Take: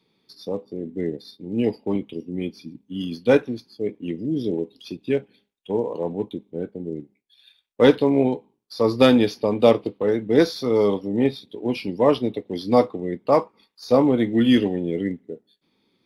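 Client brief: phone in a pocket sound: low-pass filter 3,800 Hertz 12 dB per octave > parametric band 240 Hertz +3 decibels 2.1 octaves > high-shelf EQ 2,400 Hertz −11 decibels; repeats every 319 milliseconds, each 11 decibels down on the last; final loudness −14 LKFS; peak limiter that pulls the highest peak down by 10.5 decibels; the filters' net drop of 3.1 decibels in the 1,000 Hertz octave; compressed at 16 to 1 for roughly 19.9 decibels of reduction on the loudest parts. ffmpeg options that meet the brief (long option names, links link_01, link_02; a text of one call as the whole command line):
ffmpeg -i in.wav -af "equalizer=frequency=1000:width_type=o:gain=-3,acompressor=threshold=-30dB:ratio=16,alimiter=level_in=5dB:limit=-24dB:level=0:latency=1,volume=-5dB,lowpass=3800,equalizer=frequency=240:width_type=o:width=2.1:gain=3,highshelf=frequency=2400:gain=-11,aecho=1:1:319|638|957:0.282|0.0789|0.0221,volume=23.5dB" out.wav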